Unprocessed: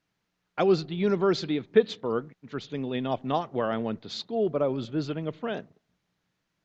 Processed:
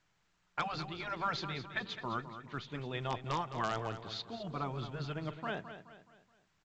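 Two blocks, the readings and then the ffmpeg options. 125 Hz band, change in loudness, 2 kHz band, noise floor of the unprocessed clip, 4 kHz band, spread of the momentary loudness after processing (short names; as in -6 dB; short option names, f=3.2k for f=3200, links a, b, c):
-6.0 dB, -10.5 dB, -1.5 dB, -80 dBFS, -5.0 dB, 8 LU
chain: -filter_complex "[0:a]lowpass=f=1.7k:p=1,afftfilt=real='re*lt(hypot(re,im),0.251)':imag='im*lt(hypot(re,im),0.251)':win_size=1024:overlap=0.75,asplit=2[a][b];[b]aeval=exprs='(mod(10*val(0)+1,2)-1)/10':c=same,volume=-11.5dB[c];[a][c]amix=inputs=2:normalize=0,equalizer=f=125:t=o:w=1:g=-3,equalizer=f=250:t=o:w=1:g=-10,equalizer=f=500:t=o:w=1:g=-9,asplit=2[d][e];[e]aecho=0:1:212|424|636|848:0.282|0.116|0.0474|0.0194[f];[d][f]amix=inputs=2:normalize=0" -ar 16000 -c:a pcm_mulaw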